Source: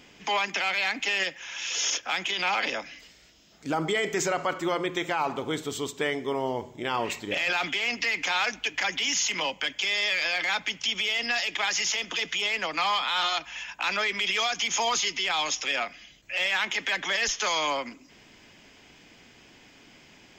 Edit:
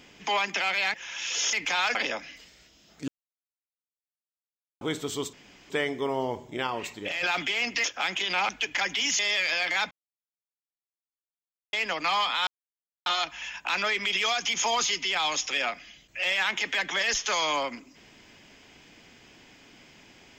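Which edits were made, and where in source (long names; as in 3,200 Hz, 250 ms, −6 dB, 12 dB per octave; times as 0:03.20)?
0:00.94–0:01.34: remove
0:01.93–0:02.58: swap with 0:08.10–0:08.52
0:03.71–0:05.44: silence
0:05.96: splice in room tone 0.37 s
0:06.93–0:07.49: clip gain −4 dB
0:09.22–0:09.92: remove
0:10.64–0:12.46: silence
0:13.20: splice in silence 0.59 s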